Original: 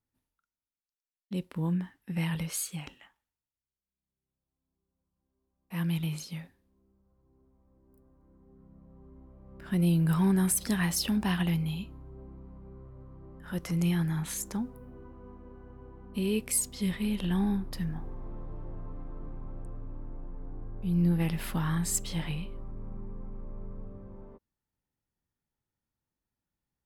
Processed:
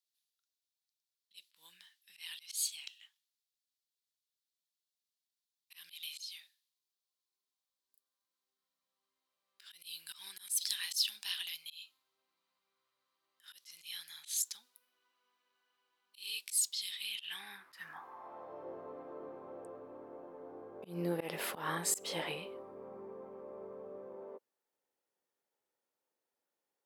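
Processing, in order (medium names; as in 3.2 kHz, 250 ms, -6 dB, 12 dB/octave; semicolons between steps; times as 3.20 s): high-pass sweep 3.9 kHz -> 480 Hz, 16.94–18.70 s; slow attack 143 ms; trim +1 dB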